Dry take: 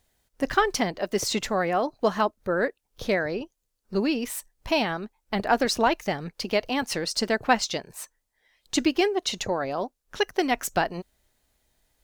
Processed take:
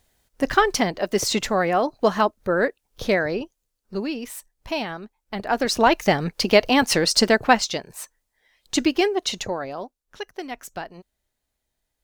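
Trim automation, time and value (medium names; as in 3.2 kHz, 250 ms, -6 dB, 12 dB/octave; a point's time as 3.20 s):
3.39 s +4 dB
4.04 s -3 dB
5.40 s -3 dB
6.08 s +9 dB
7.18 s +9 dB
7.69 s +2.5 dB
9.28 s +2.5 dB
10.24 s -9 dB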